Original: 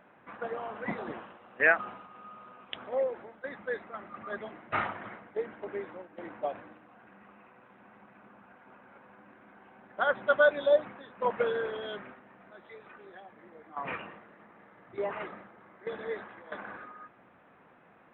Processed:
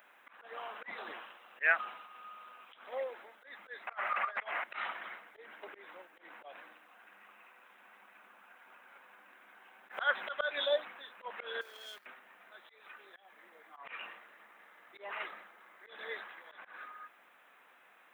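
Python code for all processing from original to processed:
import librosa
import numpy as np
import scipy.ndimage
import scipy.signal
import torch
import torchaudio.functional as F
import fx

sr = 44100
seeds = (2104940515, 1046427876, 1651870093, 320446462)

y = fx.chain(x, sr, fx.band_shelf(hz=1200.0, db=14.5, octaves=2.8),
    fx.over_compress(threshold_db=-31.0, ratio=-0.5), at=(3.87, 4.64))
y = fx.chain(y, sr, fx.peak_eq(hz=1900.0, db=4.0, octaves=2.2),
    fx.band_squash(depth_pct=70), at=(9.89, 10.65))
y = fx.chain(y, sr, fx.law_mismatch(coded='A'),
    fx.level_steps(step_db=16), at=(11.61, 12.06))
y = scipy.signal.sosfilt(scipy.signal.butter(2, 190.0, 'highpass', fs=sr, output='sos'), y)
y = np.diff(y, prepend=0.0)
y = fx.auto_swell(y, sr, attack_ms=166.0)
y = F.gain(torch.from_numpy(y), 13.5).numpy()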